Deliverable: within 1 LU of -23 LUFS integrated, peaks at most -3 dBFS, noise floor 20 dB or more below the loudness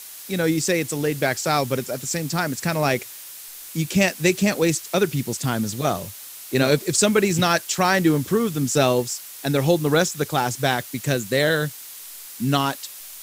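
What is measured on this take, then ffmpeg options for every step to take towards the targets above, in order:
noise floor -39 dBFS; noise floor target -42 dBFS; loudness -22.0 LUFS; peak -4.0 dBFS; loudness target -23.0 LUFS
-> -af "afftdn=nr=6:nf=-39"
-af "volume=-1dB"

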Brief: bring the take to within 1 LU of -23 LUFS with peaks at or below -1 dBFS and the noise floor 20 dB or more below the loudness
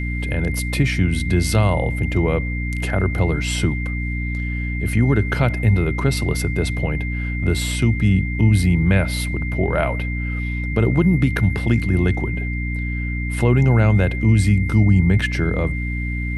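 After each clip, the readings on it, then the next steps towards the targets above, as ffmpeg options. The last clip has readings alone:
hum 60 Hz; harmonics up to 300 Hz; hum level -22 dBFS; steady tone 2100 Hz; tone level -29 dBFS; loudness -19.5 LUFS; peak -3.5 dBFS; loudness target -23.0 LUFS
-> -af "bandreject=f=60:t=h:w=4,bandreject=f=120:t=h:w=4,bandreject=f=180:t=h:w=4,bandreject=f=240:t=h:w=4,bandreject=f=300:t=h:w=4"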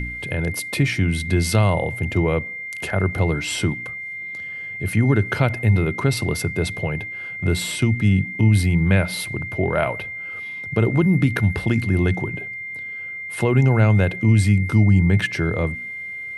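hum none; steady tone 2100 Hz; tone level -29 dBFS
-> -af "bandreject=f=2.1k:w=30"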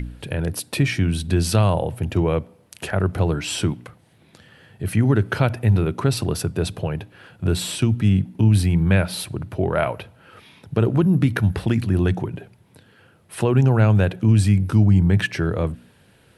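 steady tone none; loudness -20.5 LUFS; peak -4.0 dBFS; loudness target -23.0 LUFS
-> -af "volume=-2.5dB"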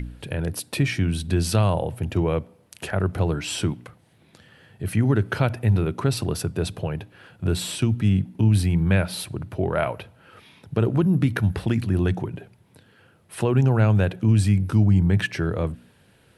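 loudness -23.0 LUFS; peak -6.5 dBFS; noise floor -58 dBFS

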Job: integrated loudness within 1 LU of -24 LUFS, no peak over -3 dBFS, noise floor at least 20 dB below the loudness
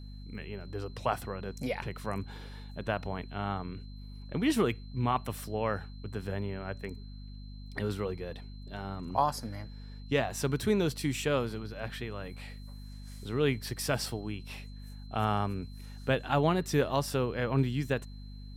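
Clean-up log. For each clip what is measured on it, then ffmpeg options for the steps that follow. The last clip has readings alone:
hum 50 Hz; harmonics up to 250 Hz; hum level -42 dBFS; steady tone 4100 Hz; tone level -58 dBFS; loudness -33.0 LUFS; peak -13.5 dBFS; loudness target -24.0 LUFS
-> -af "bandreject=f=50:t=h:w=6,bandreject=f=100:t=h:w=6,bandreject=f=150:t=h:w=6,bandreject=f=200:t=h:w=6,bandreject=f=250:t=h:w=6"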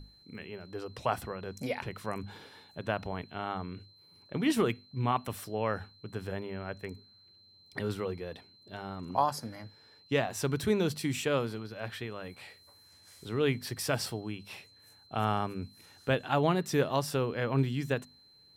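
hum none; steady tone 4100 Hz; tone level -58 dBFS
-> -af "bandreject=f=4.1k:w=30"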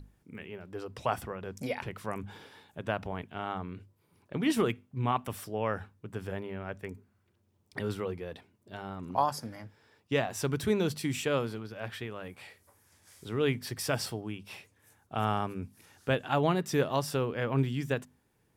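steady tone none; loudness -33.5 LUFS; peak -13.5 dBFS; loudness target -24.0 LUFS
-> -af "volume=9.5dB"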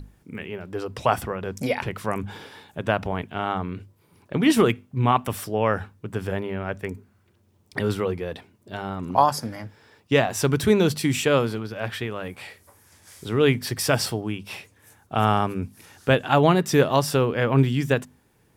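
loudness -24.0 LUFS; peak -4.0 dBFS; noise floor -62 dBFS

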